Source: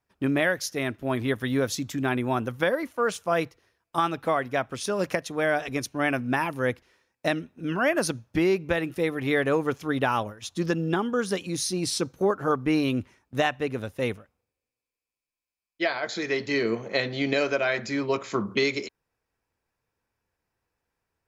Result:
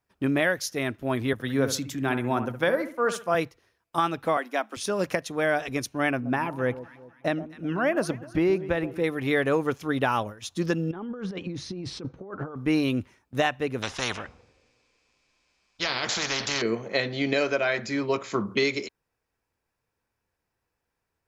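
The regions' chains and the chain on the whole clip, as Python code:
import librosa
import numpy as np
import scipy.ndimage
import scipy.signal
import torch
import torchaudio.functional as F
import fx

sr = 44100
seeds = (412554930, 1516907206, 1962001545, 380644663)

y = fx.chain(x, sr, fx.echo_bbd(ms=66, stages=1024, feedback_pct=36, wet_db=-9.5),
    fx.band_widen(depth_pct=40), at=(1.33, 3.35))
y = fx.chain(y, sr, fx.cheby_ripple_highpass(hz=210.0, ripple_db=6),
    fx.high_shelf(hz=2300.0, db=9.0), at=(4.37, 4.77))
y = fx.chain(y, sr, fx.high_shelf(hz=2600.0, db=-9.5),
    fx.echo_alternate(ms=126, hz=1000.0, feedback_pct=61, wet_db=-13.5), at=(6.1, 9.04))
y = fx.chain(y, sr, fx.spacing_loss(db_at_10k=34),
    fx.over_compress(threshold_db=-35.0, ratio=-1.0), at=(10.91, 12.56))
y = fx.chain(y, sr, fx.lowpass(hz=6400.0, slope=24),
    fx.spectral_comp(ratio=4.0), at=(13.82, 16.62))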